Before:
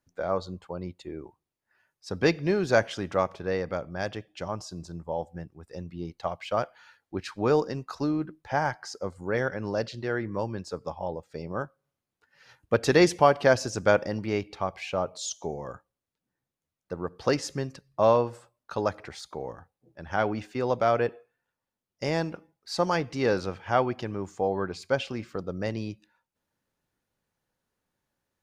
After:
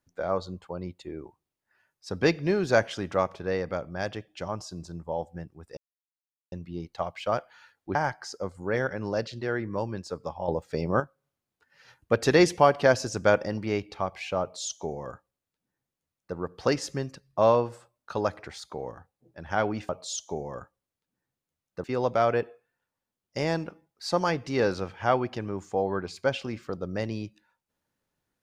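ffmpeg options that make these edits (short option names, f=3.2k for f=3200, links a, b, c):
-filter_complex "[0:a]asplit=7[a][b][c][d][e][f][g];[a]atrim=end=5.77,asetpts=PTS-STARTPTS,afade=t=out:st=5.766:d=0.004:c=hsin,apad=pad_dur=0.75[h];[b]atrim=start=5.77:end=7.202,asetpts=PTS-STARTPTS,afade=t=in:d=0.004:c=hsin[i];[c]atrim=start=8.558:end=11.092[j];[d]atrim=start=11.088:end=11.612,asetpts=PTS-STARTPTS,volume=7.5dB[k];[e]atrim=start=11.608:end=20.502[l];[f]atrim=start=15.018:end=16.972[m];[g]atrim=start=20.498[n];[h][i]concat=n=2:v=0:a=1[o];[o][j]acrossfade=d=0.004:c1=hsin:c2=hsin[p];[p][k]acrossfade=d=0.004:c1=hsin:c2=hsin[q];[q][l]acrossfade=d=0.004:c1=hsin:c2=hsin[r];[r][m]acrossfade=d=0.004:c1=hsin:c2=hsin[s];[s][n]acrossfade=d=0.004:c1=hsin:c2=hsin"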